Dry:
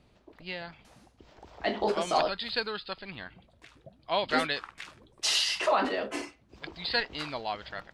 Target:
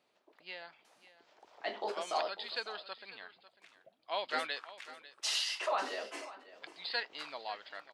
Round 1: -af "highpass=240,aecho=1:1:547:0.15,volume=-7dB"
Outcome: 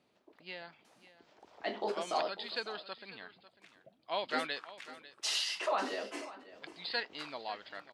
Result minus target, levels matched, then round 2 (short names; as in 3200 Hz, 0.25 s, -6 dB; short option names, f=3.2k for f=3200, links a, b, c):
250 Hz band +7.0 dB
-af "highpass=480,aecho=1:1:547:0.15,volume=-7dB"